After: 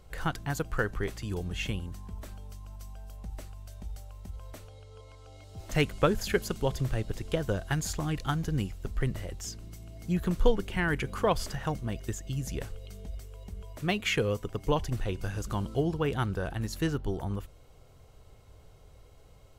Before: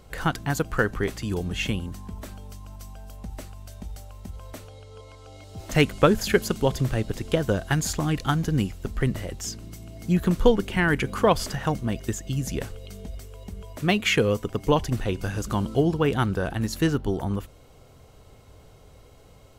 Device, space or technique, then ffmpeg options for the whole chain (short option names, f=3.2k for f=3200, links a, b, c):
low shelf boost with a cut just above: -af "lowshelf=f=63:g=7.5,equalizer=f=240:t=o:w=0.62:g=-4,volume=-6.5dB"